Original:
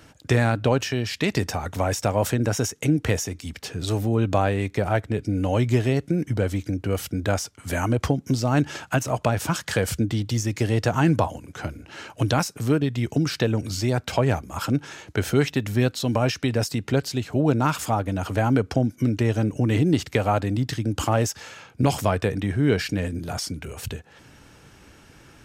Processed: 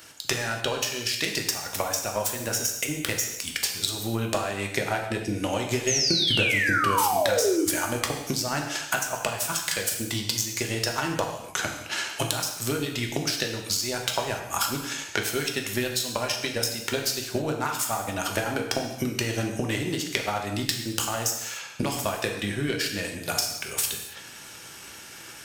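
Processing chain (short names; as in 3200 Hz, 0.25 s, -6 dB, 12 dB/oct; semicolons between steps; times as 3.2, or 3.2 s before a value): self-modulated delay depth 0.053 ms; tilt +3.5 dB/oct; vocal rider within 4 dB 0.5 s; transient shaper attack +10 dB, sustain -4 dB; compressor 4:1, threshold -25 dBFS, peak gain reduction 13.5 dB; painted sound fall, 5.87–7.65, 290–6800 Hz -25 dBFS; non-linear reverb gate 0.32 s falling, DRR 1.5 dB; gain -1 dB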